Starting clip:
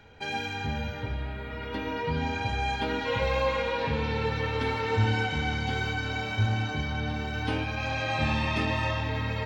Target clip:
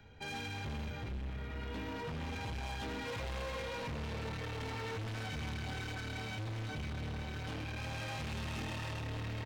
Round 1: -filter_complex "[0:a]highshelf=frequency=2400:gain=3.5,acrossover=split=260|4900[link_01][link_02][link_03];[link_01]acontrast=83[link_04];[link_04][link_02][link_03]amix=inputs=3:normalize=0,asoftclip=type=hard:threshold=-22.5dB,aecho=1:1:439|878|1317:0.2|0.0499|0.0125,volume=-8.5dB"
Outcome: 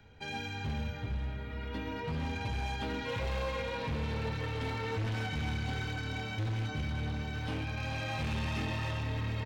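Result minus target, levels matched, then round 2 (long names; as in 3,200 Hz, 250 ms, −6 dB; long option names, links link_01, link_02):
hard clipping: distortion −5 dB
-filter_complex "[0:a]highshelf=frequency=2400:gain=3.5,acrossover=split=260|4900[link_01][link_02][link_03];[link_01]acontrast=83[link_04];[link_04][link_02][link_03]amix=inputs=3:normalize=0,asoftclip=type=hard:threshold=-30dB,aecho=1:1:439|878|1317:0.2|0.0499|0.0125,volume=-8.5dB"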